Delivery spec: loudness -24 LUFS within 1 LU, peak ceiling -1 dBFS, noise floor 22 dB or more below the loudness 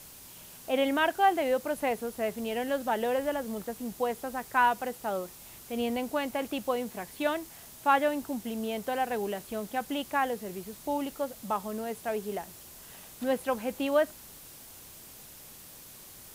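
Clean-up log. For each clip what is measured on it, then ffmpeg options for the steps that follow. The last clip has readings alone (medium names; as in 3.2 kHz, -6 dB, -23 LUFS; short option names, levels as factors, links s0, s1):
noise floor -49 dBFS; noise floor target -53 dBFS; loudness -31.0 LUFS; peak level -11.5 dBFS; loudness target -24.0 LUFS
-> -af "afftdn=nr=6:nf=-49"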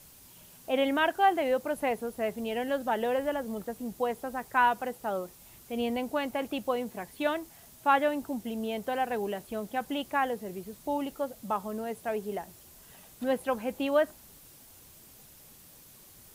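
noise floor -54 dBFS; loudness -31.0 LUFS; peak level -11.5 dBFS; loudness target -24.0 LUFS
-> -af "volume=2.24"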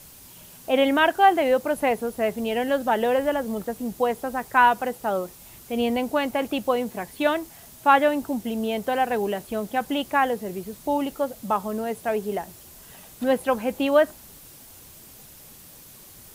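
loudness -24.0 LUFS; peak level -4.5 dBFS; noise floor -47 dBFS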